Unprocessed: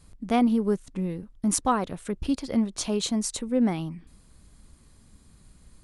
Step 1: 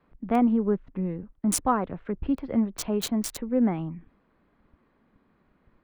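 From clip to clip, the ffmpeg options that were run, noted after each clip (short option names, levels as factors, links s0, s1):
-filter_complex "[0:a]acrossover=split=220|1200|2300[s0][s1][s2][s3];[s0]agate=range=0.0891:threshold=0.00447:ratio=16:detection=peak[s4];[s3]aeval=exprs='val(0)*gte(abs(val(0)),0.0501)':c=same[s5];[s4][s1][s2][s5]amix=inputs=4:normalize=0"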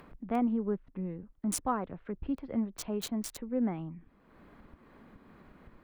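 -af "acompressor=mode=upward:threshold=0.0251:ratio=2.5,volume=0.422"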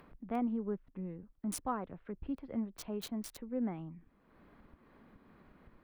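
-af "equalizer=f=7300:w=2.4:g=-5,volume=0.562"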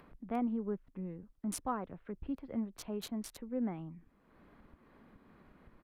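-af "aresample=32000,aresample=44100"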